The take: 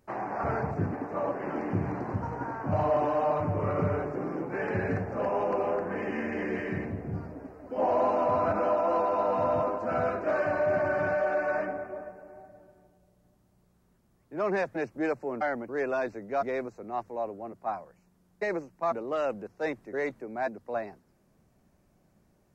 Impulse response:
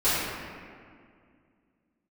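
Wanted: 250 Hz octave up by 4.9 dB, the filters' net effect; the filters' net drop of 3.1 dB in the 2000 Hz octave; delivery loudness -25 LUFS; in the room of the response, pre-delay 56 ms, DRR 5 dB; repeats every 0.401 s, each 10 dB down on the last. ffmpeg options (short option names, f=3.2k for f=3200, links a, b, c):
-filter_complex "[0:a]equalizer=f=250:t=o:g=6.5,equalizer=f=2k:t=o:g=-4.5,aecho=1:1:401|802|1203|1604:0.316|0.101|0.0324|0.0104,asplit=2[a][b];[1:a]atrim=start_sample=2205,adelay=56[c];[b][c]afir=irnorm=-1:irlink=0,volume=-21dB[d];[a][d]amix=inputs=2:normalize=0,volume=2.5dB"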